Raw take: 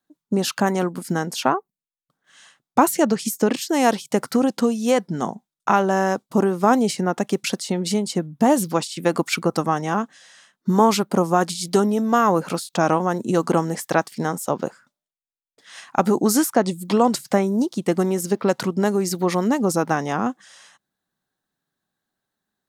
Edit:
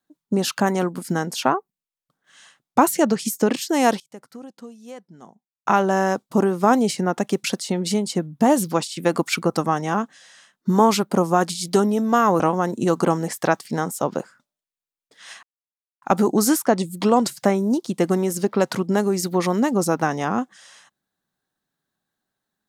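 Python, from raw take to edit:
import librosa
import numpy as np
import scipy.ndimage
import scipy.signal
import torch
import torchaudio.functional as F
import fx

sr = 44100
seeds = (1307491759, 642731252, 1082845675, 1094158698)

y = fx.edit(x, sr, fx.fade_down_up(start_s=3.86, length_s=1.93, db=-20.0, fade_s=0.14, curve='log'),
    fx.cut(start_s=12.4, length_s=0.47),
    fx.insert_silence(at_s=15.9, length_s=0.59), tone=tone)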